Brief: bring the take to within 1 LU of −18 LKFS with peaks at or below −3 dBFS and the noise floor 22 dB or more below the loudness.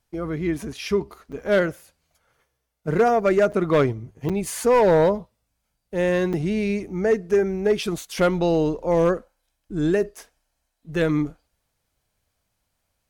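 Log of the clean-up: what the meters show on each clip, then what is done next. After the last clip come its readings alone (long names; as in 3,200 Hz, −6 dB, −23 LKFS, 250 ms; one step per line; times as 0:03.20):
share of clipped samples 0.8%; peaks flattened at −12.0 dBFS; number of dropouts 4; longest dropout 6.6 ms; integrated loudness −22.5 LKFS; sample peak −12.0 dBFS; target loudness −18.0 LKFS
→ clipped peaks rebuilt −12 dBFS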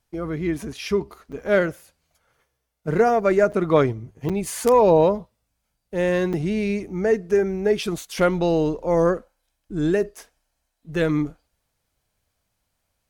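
share of clipped samples 0.0%; number of dropouts 4; longest dropout 6.6 ms
→ repair the gap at 0:01.32/0:03.52/0:04.29/0:06.33, 6.6 ms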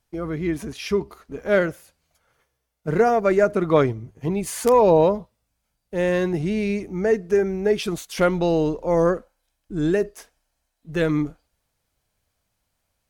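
number of dropouts 0; integrated loudness −22.0 LKFS; sample peak −3.0 dBFS; target loudness −18.0 LKFS
→ level +4 dB
brickwall limiter −3 dBFS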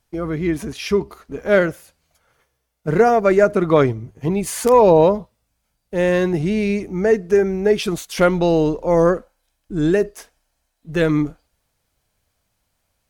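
integrated loudness −18.0 LKFS; sample peak −3.0 dBFS; background noise floor −72 dBFS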